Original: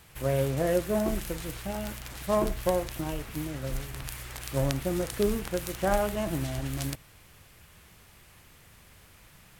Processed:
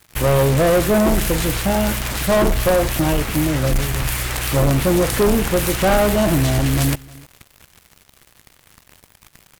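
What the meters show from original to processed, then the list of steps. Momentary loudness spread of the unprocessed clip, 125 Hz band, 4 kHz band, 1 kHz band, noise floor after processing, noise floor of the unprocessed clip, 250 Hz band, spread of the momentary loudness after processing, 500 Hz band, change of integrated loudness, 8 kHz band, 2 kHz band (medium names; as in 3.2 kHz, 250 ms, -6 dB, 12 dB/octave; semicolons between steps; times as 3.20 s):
10 LU, +14.0 dB, +15.0 dB, +12.0 dB, -55 dBFS, -56 dBFS, +13.0 dB, 6 LU, +11.5 dB, +13.0 dB, +15.0 dB, +15.0 dB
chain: waveshaping leveller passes 5; on a send: delay 305 ms -23 dB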